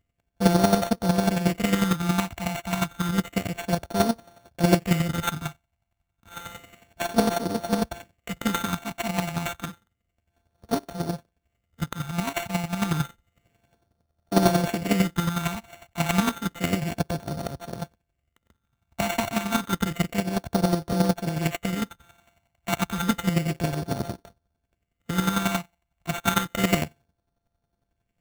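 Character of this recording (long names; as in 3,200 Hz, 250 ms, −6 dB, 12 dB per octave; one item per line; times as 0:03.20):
a buzz of ramps at a fixed pitch in blocks of 64 samples
phaser sweep stages 6, 0.3 Hz, lowest notch 420–2,400 Hz
chopped level 11 Hz, depth 60%, duty 20%
aliases and images of a low sample rate 5,000 Hz, jitter 0%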